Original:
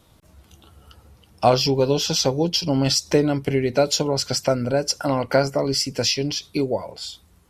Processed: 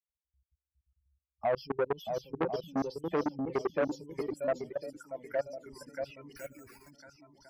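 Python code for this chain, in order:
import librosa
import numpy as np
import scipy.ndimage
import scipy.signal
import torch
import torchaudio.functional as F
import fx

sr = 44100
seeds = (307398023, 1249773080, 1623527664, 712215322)

y = fx.bin_expand(x, sr, power=3.0)
y = fx.graphic_eq_15(y, sr, hz=(100, 630, 4000), db=(-11, 7, -9))
y = fx.level_steps(y, sr, step_db=24)
y = fx.echo_swing(y, sr, ms=1054, ratio=1.5, feedback_pct=31, wet_db=-5.5)
y = fx.resample_bad(y, sr, factor=6, down='none', up='hold', at=(6.36, 6.91))
y = fx.env_phaser(y, sr, low_hz=440.0, high_hz=1800.0, full_db=-25.5)
y = fx.low_shelf(y, sr, hz=470.0, db=-7.0, at=(4.68, 5.66))
y = fx.transformer_sat(y, sr, knee_hz=1000.0)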